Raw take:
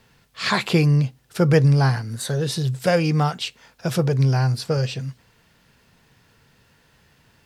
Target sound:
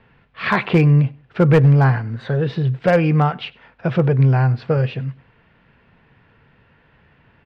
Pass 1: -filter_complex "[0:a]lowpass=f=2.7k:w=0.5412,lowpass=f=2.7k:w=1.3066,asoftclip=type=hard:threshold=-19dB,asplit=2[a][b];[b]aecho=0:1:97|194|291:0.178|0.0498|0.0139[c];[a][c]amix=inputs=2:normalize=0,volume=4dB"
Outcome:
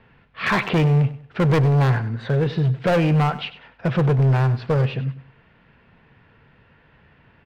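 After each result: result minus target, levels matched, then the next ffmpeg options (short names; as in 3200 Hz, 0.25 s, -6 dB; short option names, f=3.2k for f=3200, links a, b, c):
hard clip: distortion +14 dB; echo-to-direct +9 dB
-filter_complex "[0:a]lowpass=f=2.7k:w=0.5412,lowpass=f=2.7k:w=1.3066,asoftclip=type=hard:threshold=-11dB,asplit=2[a][b];[b]aecho=0:1:97|194|291:0.178|0.0498|0.0139[c];[a][c]amix=inputs=2:normalize=0,volume=4dB"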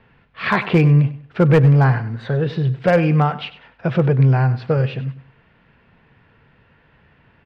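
echo-to-direct +9 dB
-filter_complex "[0:a]lowpass=f=2.7k:w=0.5412,lowpass=f=2.7k:w=1.3066,asoftclip=type=hard:threshold=-11dB,asplit=2[a][b];[b]aecho=0:1:97|194:0.0631|0.0177[c];[a][c]amix=inputs=2:normalize=0,volume=4dB"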